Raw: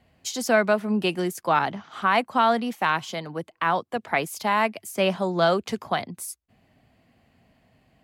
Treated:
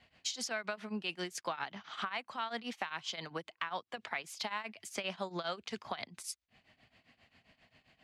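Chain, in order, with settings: LPF 4600 Hz 12 dB/oct; tilt shelf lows -8.5 dB, about 1200 Hz; limiter -16 dBFS, peak gain reduction 9 dB; tremolo triangle 7.5 Hz, depth 90%; compressor 4:1, threshold -38 dBFS, peak gain reduction 12 dB; gain +2 dB

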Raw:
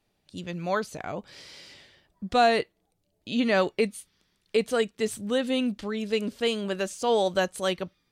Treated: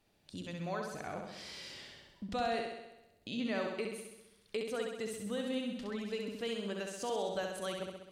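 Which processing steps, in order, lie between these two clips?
compressor 2:1, threshold -47 dBFS, peak gain reduction 16.5 dB; on a send: flutter echo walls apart 11.2 m, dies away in 0.95 s

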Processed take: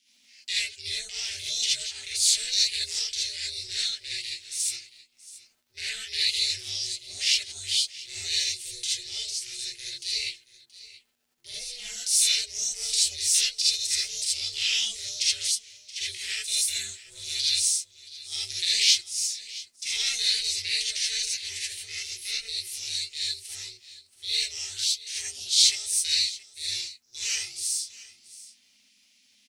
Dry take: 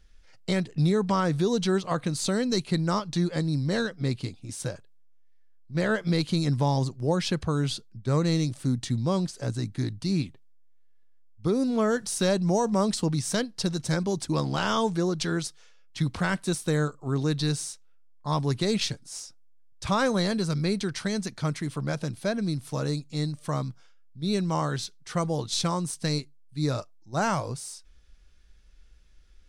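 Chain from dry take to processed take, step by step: elliptic high-pass 2300 Hz, stop band 40 dB; ring modulator 240 Hz; crackle 37/s -65 dBFS; echo 0.676 s -18 dB; non-linear reverb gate 0.1 s rising, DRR -7 dB; gain +6.5 dB

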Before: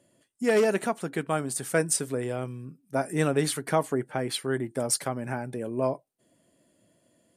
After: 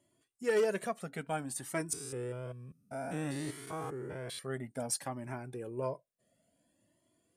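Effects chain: 1.93–4.39 stepped spectrum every 0.2 s; cascading flanger rising 0.57 Hz; gain -3.5 dB

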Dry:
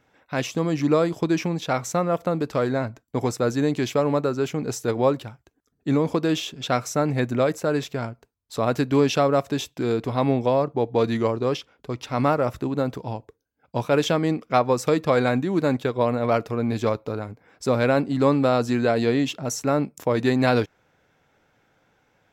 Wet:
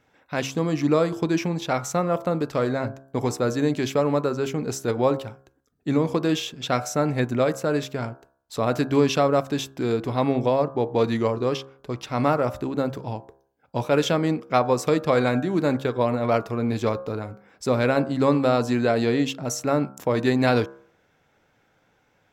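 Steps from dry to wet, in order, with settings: de-hum 67.43 Hz, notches 25

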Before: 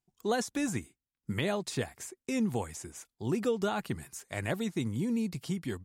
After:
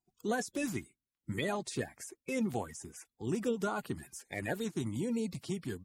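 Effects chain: bin magnitudes rounded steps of 30 dB; 2.66–3.59 bell 4300 Hz -8 dB 0.27 oct; gain -2.5 dB

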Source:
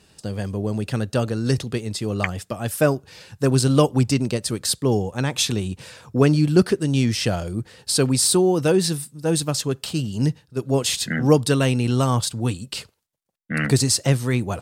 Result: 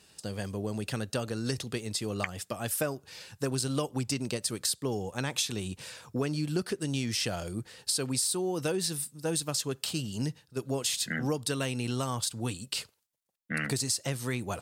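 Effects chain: tilt +1.5 dB/oct; compressor, threshold -22 dBFS, peak gain reduction 10.5 dB; gain -5 dB

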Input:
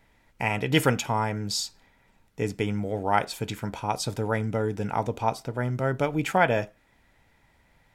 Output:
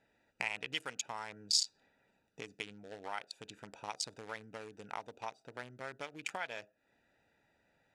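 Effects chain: Wiener smoothing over 41 samples; compressor 12:1, threshold -39 dBFS, peak gain reduction 23.5 dB; weighting filter ITU-R 468; gain +3 dB

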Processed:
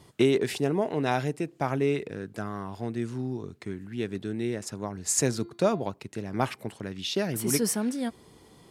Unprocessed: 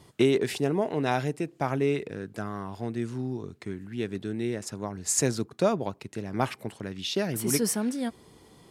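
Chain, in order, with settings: 5.25–5.91 de-hum 344.7 Hz, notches 13

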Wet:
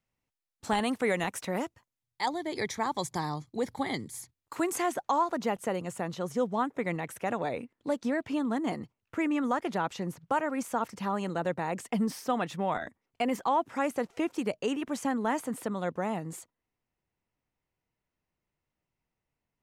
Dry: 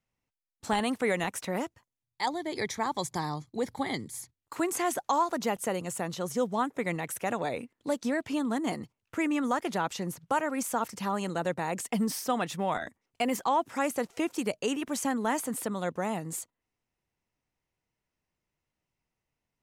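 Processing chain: high shelf 4500 Hz -2 dB, from 4.86 s -10.5 dB

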